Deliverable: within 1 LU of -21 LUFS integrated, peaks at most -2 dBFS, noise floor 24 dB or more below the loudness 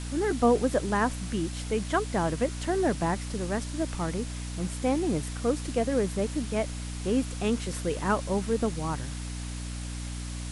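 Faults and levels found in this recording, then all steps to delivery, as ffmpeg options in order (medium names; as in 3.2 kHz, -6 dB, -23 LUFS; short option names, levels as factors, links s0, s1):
hum 60 Hz; highest harmonic 300 Hz; hum level -33 dBFS; noise floor -36 dBFS; noise floor target -54 dBFS; loudness -29.5 LUFS; peak level -12.0 dBFS; loudness target -21.0 LUFS
-> -af "bandreject=f=60:t=h:w=4,bandreject=f=120:t=h:w=4,bandreject=f=180:t=h:w=4,bandreject=f=240:t=h:w=4,bandreject=f=300:t=h:w=4"
-af "afftdn=nr=18:nf=-36"
-af "volume=2.66"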